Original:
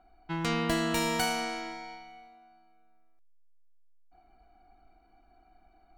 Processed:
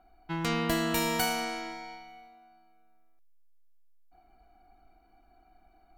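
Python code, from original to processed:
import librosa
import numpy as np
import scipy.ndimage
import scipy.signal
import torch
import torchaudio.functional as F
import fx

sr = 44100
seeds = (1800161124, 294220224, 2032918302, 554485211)

y = fx.peak_eq(x, sr, hz=14000.0, db=11.5, octaves=0.34)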